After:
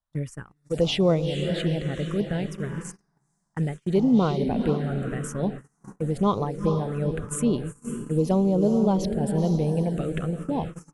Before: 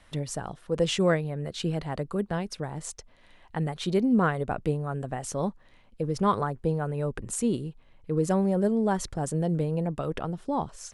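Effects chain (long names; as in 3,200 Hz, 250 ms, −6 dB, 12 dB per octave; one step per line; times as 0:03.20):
feedback delay with all-pass diffusion 461 ms, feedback 45%, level −6.5 dB
phaser swept by the level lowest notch 380 Hz, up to 1,700 Hz, full sweep at −21 dBFS
noise gate −35 dBFS, range −33 dB
level +3.5 dB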